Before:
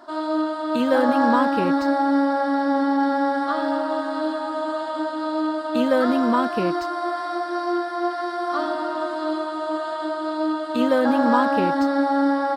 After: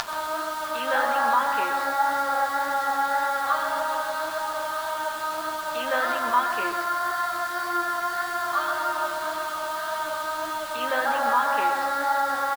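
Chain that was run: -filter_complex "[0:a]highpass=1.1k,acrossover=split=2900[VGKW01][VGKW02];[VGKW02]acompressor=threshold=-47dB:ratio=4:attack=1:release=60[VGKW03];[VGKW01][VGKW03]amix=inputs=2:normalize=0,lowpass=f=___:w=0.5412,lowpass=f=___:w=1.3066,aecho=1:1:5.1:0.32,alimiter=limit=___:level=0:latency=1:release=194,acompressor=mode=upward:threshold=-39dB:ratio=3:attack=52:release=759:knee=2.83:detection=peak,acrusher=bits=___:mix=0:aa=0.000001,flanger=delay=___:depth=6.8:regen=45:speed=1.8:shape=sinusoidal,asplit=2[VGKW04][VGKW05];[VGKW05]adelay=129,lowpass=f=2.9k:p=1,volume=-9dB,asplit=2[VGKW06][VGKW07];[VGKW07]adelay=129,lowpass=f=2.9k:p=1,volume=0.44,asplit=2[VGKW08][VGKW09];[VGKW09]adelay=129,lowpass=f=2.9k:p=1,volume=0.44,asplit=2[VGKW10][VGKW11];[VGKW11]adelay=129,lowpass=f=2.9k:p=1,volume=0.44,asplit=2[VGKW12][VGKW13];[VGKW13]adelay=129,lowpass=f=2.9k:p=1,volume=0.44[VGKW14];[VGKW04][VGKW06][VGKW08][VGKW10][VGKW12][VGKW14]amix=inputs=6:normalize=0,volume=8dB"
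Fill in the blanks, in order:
4.9k, 4.9k, -15dB, 6, 8.5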